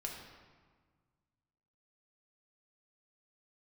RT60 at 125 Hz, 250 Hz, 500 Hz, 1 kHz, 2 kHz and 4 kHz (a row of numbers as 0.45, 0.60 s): 2.4, 2.0, 1.5, 1.6, 1.3, 1.0 s